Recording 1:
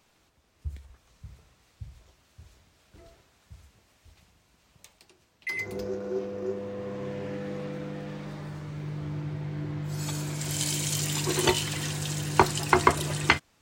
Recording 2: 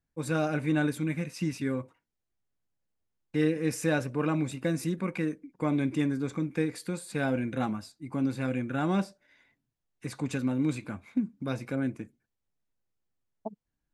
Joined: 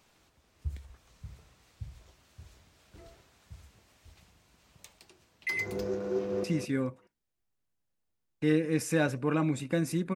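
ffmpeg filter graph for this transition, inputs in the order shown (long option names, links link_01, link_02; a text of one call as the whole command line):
ffmpeg -i cue0.wav -i cue1.wav -filter_complex "[0:a]apad=whole_dur=10.15,atrim=end=10.15,atrim=end=6.442[link_01];[1:a]atrim=start=1.358:end=5.07[link_02];[link_01][link_02]acrossfade=duration=0.004:curve1=hsin:curve2=hsin,asplit=2[link_03][link_04];[link_04]afade=type=in:start_time=6.08:duration=0.01,afade=type=out:start_time=6.44:duration=0.01,aecho=0:1:210|420|630:0.473151|0.118288|0.029572[link_05];[link_03][link_05]amix=inputs=2:normalize=0" out.wav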